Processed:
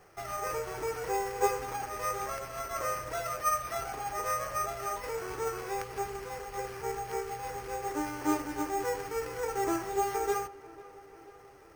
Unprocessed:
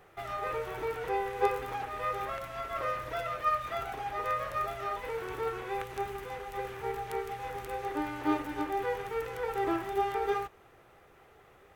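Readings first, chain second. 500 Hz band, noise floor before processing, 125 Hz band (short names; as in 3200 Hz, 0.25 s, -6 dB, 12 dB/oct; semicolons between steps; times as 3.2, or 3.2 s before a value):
0.0 dB, -59 dBFS, 0.0 dB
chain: careless resampling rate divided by 6×, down filtered, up hold; dark delay 0.49 s, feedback 65%, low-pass 3300 Hz, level -20 dB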